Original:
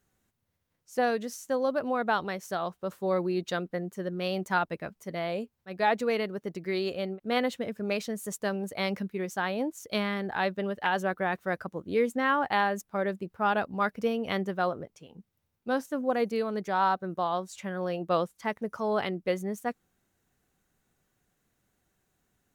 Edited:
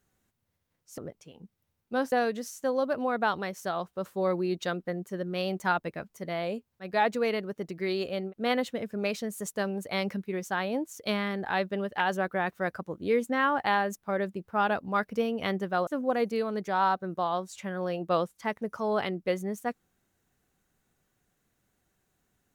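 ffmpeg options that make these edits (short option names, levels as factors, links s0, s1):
-filter_complex "[0:a]asplit=4[s0][s1][s2][s3];[s0]atrim=end=0.982[s4];[s1]atrim=start=14.728:end=15.872[s5];[s2]atrim=start=0.978:end=14.732[s6];[s3]atrim=start=15.868[s7];[s4][s5]acrossfade=d=0.004:c1=hsin:c2=hsin[s8];[s8][s6]acrossfade=d=0.004:c1=hsin:c2=hsin[s9];[s9][s7]acrossfade=d=0.004:c1=hsin:c2=hsin"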